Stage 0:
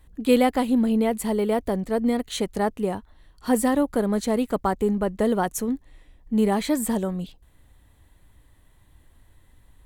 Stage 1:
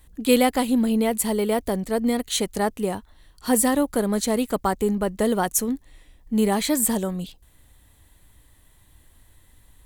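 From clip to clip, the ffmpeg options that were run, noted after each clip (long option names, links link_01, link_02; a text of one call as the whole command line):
ffmpeg -i in.wav -af "highshelf=frequency=3300:gain=10" out.wav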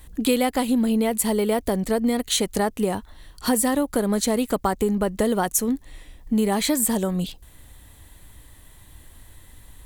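ffmpeg -i in.wav -af "acompressor=threshold=-28dB:ratio=3,volume=7.5dB" out.wav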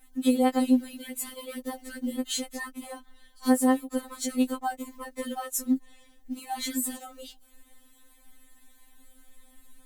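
ffmpeg -i in.wav -af "acrusher=bits=9:mode=log:mix=0:aa=0.000001,afftfilt=real='re*3.46*eq(mod(b,12),0)':imag='im*3.46*eq(mod(b,12),0)':win_size=2048:overlap=0.75,volume=-6dB" out.wav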